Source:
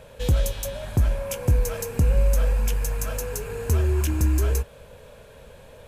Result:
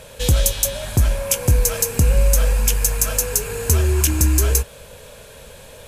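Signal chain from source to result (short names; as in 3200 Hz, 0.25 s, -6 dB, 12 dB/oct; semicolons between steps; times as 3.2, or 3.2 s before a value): bell 9100 Hz +11.5 dB 2.8 oct; gain +4 dB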